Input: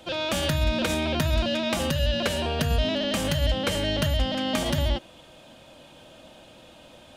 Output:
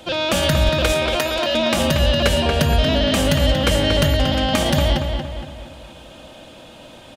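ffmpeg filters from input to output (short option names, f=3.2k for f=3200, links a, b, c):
-filter_complex "[0:a]asettb=1/sr,asplit=3[a][b][c];[a]atrim=end=0.694[d];[b]atrim=start=0.69:end=1.55,asetpts=PTS-STARTPTS,afade=t=in:d=0.004:c=qsin,afade=t=out:st=0.856:d=0.004:c=qsin,highpass=f=340:w=0.5412,highpass=f=340:w=1.3066[e];[c]atrim=start=1.546[f];[d][e]acrossfade=d=0.004:c1=hsin:c2=qsin[g];[g][f]acrossfade=d=0.004:c1=qsin:c2=hsin,asplit=2[h][i];[i]adelay=233,lowpass=f=3.7k:p=1,volume=-5.5dB,asplit=2[j][k];[k]adelay=233,lowpass=f=3.7k:p=1,volume=0.48,asplit=2[l][m];[m]adelay=233,lowpass=f=3.7k:p=1,volume=0.48,asplit=2[n][o];[o]adelay=233,lowpass=f=3.7k:p=1,volume=0.48,asplit=2[p][q];[q]adelay=233,lowpass=f=3.7k:p=1,volume=0.48,asplit=2[r][s];[s]adelay=233,lowpass=f=3.7k:p=1,volume=0.48[t];[h][j][l][n][p][r][t]amix=inputs=7:normalize=0,volume=7dB"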